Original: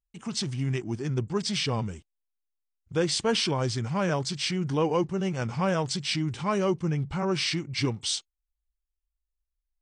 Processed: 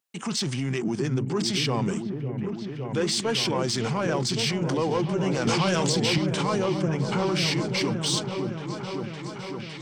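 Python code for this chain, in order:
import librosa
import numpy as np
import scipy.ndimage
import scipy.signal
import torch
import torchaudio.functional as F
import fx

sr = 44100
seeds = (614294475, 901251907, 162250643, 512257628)

p1 = scipy.signal.sosfilt(scipy.signal.butter(4, 140.0, 'highpass', fs=sr, output='sos'), x)
p2 = fx.low_shelf(p1, sr, hz=240.0, db=-5.5)
p3 = fx.over_compress(p2, sr, threshold_db=-37.0, ratio=-1.0)
p4 = p2 + (p3 * librosa.db_to_amplitude(2.5))
p5 = 10.0 ** (-16.0 / 20.0) * np.tanh(p4 / 10.0 ** (-16.0 / 20.0))
p6 = p5 + fx.echo_opening(p5, sr, ms=559, hz=400, octaves=1, feedback_pct=70, wet_db=-3, dry=0)
y = fx.band_squash(p6, sr, depth_pct=100, at=(5.47, 6.18))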